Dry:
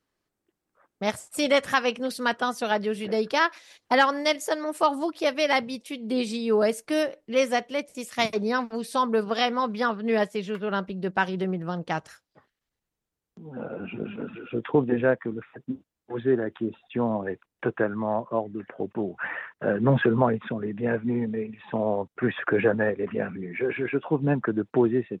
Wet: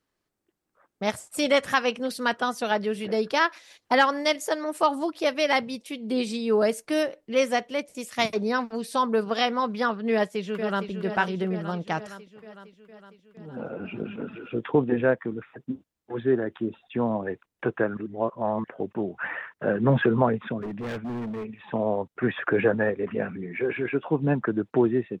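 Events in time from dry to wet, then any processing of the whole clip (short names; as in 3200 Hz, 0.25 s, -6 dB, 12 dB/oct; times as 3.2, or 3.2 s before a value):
10.12–10.89 echo throw 0.46 s, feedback 65%, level -8.5 dB
17.97–18.64 reverse
20.61–21.45 overloaded stage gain 30 dB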